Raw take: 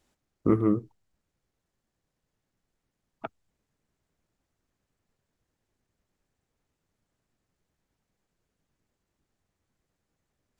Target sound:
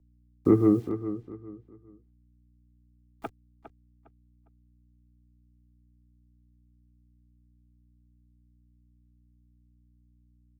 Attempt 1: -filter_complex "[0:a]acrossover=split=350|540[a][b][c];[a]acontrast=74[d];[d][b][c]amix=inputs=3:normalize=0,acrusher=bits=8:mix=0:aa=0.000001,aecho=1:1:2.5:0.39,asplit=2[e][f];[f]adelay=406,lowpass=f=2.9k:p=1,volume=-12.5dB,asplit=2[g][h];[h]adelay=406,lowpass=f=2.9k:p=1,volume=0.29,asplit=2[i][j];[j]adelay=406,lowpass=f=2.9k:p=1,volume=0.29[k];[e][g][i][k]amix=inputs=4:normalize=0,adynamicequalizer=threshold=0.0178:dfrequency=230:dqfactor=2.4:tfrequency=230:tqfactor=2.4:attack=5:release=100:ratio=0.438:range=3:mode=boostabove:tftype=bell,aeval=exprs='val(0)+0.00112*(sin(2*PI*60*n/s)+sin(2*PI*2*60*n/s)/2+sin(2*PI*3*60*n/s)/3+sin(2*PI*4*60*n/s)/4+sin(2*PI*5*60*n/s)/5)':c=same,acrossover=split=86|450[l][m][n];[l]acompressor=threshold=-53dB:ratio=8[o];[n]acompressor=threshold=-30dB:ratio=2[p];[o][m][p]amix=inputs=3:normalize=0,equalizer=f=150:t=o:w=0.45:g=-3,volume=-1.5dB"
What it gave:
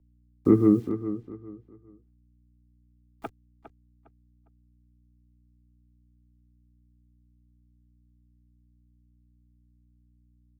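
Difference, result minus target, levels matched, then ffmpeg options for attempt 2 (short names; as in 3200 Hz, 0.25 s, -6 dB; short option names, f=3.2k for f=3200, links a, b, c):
1000 Hz band -3.5 dB
-filter_complex "[0:a]acrossover=split=350|540[a][b][c];[a]acontrast=74[d];[d][b][c]amix=inputs=3:normalize=0,acrusher=bits=8:mix=0:aa=0.000001,aecho=1:1:2.5:0.39,asplit=2[e][f];[f]adelay=406,lowpass=f=2.9k:p=1,volume=-12.5dB,asplit=2[g][h];[h]adelay=406,lowpass=f=2.9k:p=1,volume=0.29,asplit=2[i][j];[j]adelay=406,lowpass=f=2.9k:p=1,volume=0.29[k];[e][g][i][k]amix=inputs=4:normalize=0,adynamicequalizer=threshold=0.0178:dfrequency=710:dqfactor=2.4:tfrequency=710:tqfactor=2.4:attack=5:release=100:ratio=0.438:range=3:mode=boostabove:tftype=bell,aeval=exprs='val(0)+0.00112*(sin(2*PI*60*n/s)+sin(2*PI*2*60*n/s)/2+sin(2*PI*3*60*n/s)/3+sin(2*PI*4*60*n/s)/4+sin(2*PI*5*60*n/s)/5)':c=same,acrossover=split=86|450[l][m][n];[l]acompressor=threshold=-53dB:ratio=8[o];[n]acompressor=threshold=-30dB:ratio=2[p];[o][m][p]amix=inputs=3:normalize=0,equalizer=f=150:t=o:w=0.45:g=-3,volume=-1.5dB"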